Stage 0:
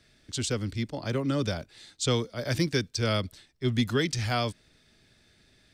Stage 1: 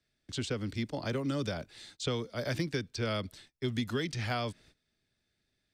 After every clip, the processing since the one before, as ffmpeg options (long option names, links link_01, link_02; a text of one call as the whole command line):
ffmpeg -i in.wav -filter_complex "[0:a]agate=range=-18dB:threshold=-55dB:ratio=16:detection=peak,acrossover=split=130|3700[link_01][link_02][link_03];[link_01]acompressor=threshold=-45dB:ratio=4[link_04];[link_02]acompressor=threshold=-31dB:ratio=4[link_05];[link_03]acompressor=threshold=-48dB:ratio=4[link_06];[link_04][link_05][link_06]amix=inputs=3:normalize=0" out.wav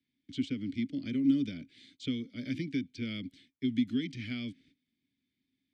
ffmpeg -i in.wav -filter_complex "[0:a]asplit=3[link_01][link_02][link_03];[link_01]bandpass=frequency=270:width_type=q:width=8,volume=0dB[link_04];[link_02]bandpass=frequency=2290:width_type=q:width=8,volume=-6dB[link_05];[link_03]bandpass=frequency=3010:width_type=q:width=8,volume=-9dB[link_06];[link_04][link_05][link_06]amix=inputs=3:normalize=0,bass=frequency=250:gain=11,treble=frequency=4000:gain=7,volume=5.5dB" out.wav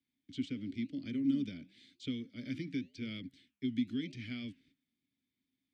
ffmpeg -i in.wav -af "flanger=delay=2.3:depth=7:regen=-90:speed=0.94:shape=triangular" out.wav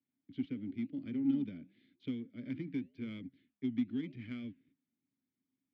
ffmpeg -i in.wav -af "adynamicsmooth=sensitivity=5:basefreq=1700,highpass=100,lowpass=4400" out.wav